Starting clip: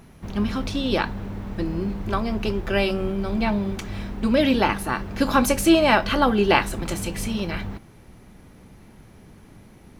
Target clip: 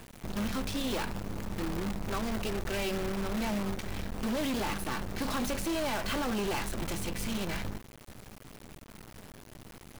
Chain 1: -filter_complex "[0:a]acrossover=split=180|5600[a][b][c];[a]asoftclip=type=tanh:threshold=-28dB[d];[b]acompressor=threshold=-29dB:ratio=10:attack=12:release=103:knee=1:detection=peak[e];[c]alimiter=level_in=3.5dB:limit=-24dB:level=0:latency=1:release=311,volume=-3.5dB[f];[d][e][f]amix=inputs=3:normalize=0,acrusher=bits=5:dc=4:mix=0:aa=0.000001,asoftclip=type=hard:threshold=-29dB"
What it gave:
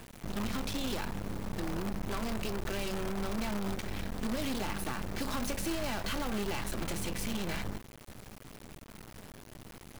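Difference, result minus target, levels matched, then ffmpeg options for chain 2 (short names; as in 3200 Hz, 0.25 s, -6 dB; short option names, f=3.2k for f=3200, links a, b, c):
soft clip: distortion +15 dB; compressor: peak gain reduction +8 dB
-filter_complex "[0:a]acrossover=split=180|5600[a][b][c];[a]asoftclip=type=tanh:threshold=-17.5dB[d];[b]acompressor=threshold=-20dB:ratio=10:attack=12:release=103:knee=1:detection=peak[e];[c]alimiter=level_in=3.5dB:limit=-24dB:level=0:latency=1:release=311,volume=-3.5dB[f];[d][e][f]amix=inputs=3:normalize=0,acrusher=bits=5:dc=4:mix=0:aa=0.000001,asoftclip=type=hard:threshold=-29dB"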